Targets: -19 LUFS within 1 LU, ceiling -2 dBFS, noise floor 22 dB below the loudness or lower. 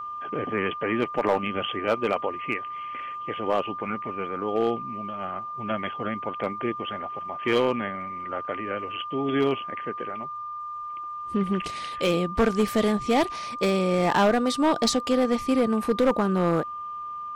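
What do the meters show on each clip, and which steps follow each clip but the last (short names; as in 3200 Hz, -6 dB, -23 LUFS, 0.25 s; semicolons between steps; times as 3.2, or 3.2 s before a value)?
clipped 1.0%; flat tops at -15.0 dBFS; steady tone 1200 Hz; tone level -32 dBFS; loudness -26.5 LUFS; peak -15.0 dBFS; loudness target -19.0 LUFS
-> clip repair -15 dBFS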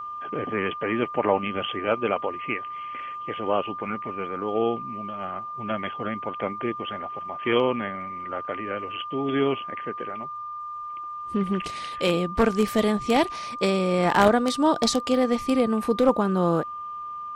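clipped 0.0%; steady tone 1200 Hz; tone level -32 dBFS
-> notch 1200 Hz, Q 30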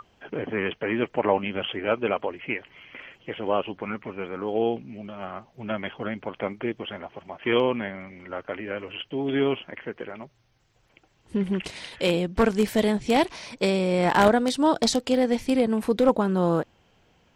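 steady tone none; loudness -25.5 LUFS; peak -5.5 dBFS; loudness target -19.0 LUFS
-> gain +6.5 dB; limiter -2 dBFS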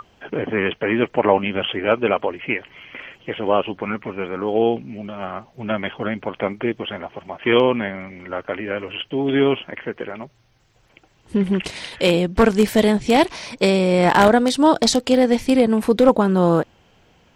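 loudness -19.5 LUFS; peak -2.0 dBFS; noise floor -57 dBFS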